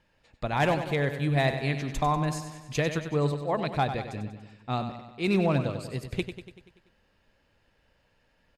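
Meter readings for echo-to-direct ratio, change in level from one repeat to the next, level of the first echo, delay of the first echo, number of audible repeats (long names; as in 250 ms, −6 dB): −7.5 dB, −4.5 dB, −9.5 dB, 96 ms, 6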